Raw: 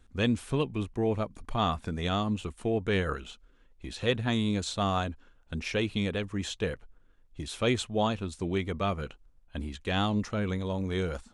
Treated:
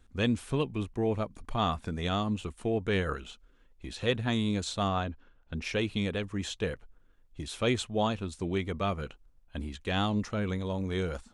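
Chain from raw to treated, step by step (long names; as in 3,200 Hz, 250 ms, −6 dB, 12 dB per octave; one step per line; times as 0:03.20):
0:04.88–0:05.62: high-frequency loss of the air 120 metres
level −1 dB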